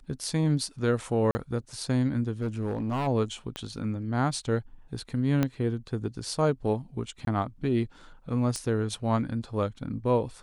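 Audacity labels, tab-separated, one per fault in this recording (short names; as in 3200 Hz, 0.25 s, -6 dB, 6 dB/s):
1.310000	1.350000	gap 40 ms
2.400000	3.080000	clipped -25.5 dBFS
3.560000	3.560000	pop -19 dBFS
5.430000	5.430000	pop -12 dBFS
7.250000	7.270000	gap 22 ms
8.560000	8.560000	pop -19 dBFS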